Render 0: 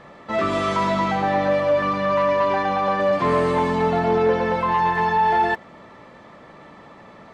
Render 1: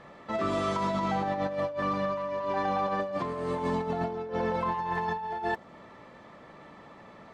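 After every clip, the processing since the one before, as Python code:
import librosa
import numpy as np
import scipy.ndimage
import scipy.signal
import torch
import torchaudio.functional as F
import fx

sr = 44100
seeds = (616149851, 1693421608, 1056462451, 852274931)

y = fx.dynamic_eq(x, sr, hz=2200.0, q=1.0, threshold_db=-36.0, ratio=4.0, max_db=-5)
y = fx.over_compress(y, sr, threshold_db=-22.0, ratio=-0.5)
y = y * librosa.db_to_amplitude(-7.5)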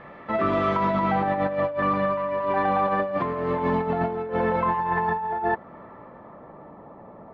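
y = fx.filter_sweep_lowpass(x, sr, from_hz=2200.0, to_hz=840.0, start_s=4.54, end_s=6.78, q=1.1)
y = y * librosa.db_to_amplitude(5.5)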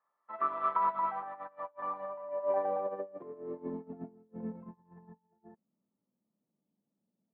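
y = fx.filter_sweep_bandpass(x, sr, from_hz=1100.0, to_hz=210.0, start_s=1.5, end_s=4.38, q=3.1)
y = fx.upward_expand(y, sr, threshold_db=-46.0, expansion=2.5)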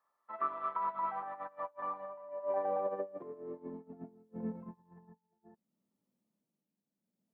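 y = x * (1.0 - 0.57 / 2.0 + 0.57 / 2.0 * np.cos(2.0 * np.pi * 0.66 * (np.arange(len(x)) / sr)))
y = y * librosa.db_to_amplitude(1.0)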